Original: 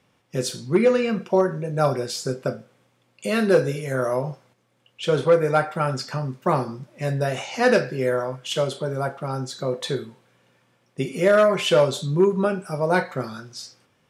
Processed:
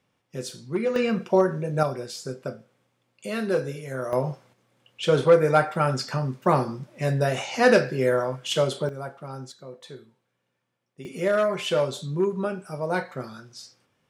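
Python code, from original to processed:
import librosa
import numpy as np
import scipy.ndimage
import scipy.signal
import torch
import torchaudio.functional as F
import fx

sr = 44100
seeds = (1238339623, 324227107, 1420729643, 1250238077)

y = fx.gain(x, sr, db=fx.steps((0.0, -8.0), (0.96, -0.5), (1.83, -7.0), (4.13, 0.5), (8.89, -9.0), (9.52, -16.0), (11.05, -6.0)))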